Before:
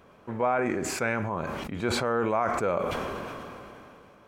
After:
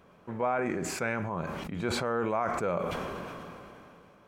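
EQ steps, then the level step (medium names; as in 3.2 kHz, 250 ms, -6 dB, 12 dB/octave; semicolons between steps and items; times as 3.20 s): peaking EQ 170 Hz +7.5 dB 0.22 oct; -3.5 dB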